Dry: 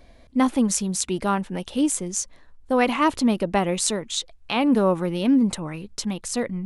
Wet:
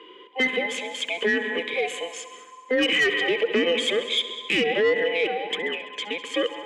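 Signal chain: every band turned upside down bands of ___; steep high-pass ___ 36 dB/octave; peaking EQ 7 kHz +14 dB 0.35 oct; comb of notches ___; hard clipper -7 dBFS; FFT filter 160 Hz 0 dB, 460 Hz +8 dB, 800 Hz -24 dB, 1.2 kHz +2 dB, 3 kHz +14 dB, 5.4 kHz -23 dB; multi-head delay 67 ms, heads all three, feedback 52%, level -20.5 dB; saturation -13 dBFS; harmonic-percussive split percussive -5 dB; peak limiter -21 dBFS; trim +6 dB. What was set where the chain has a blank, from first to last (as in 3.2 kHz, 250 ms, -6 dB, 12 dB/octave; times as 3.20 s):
1 kHz, 170 Hz, 1.4 kHz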